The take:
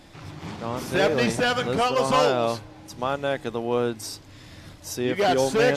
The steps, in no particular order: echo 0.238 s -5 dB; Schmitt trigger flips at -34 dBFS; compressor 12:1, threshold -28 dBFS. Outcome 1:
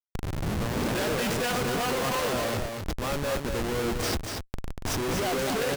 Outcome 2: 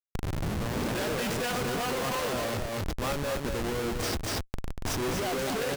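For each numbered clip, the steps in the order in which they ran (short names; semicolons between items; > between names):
Schmitt trigger > compressor > echo; Schmitt trigger > echo > compressor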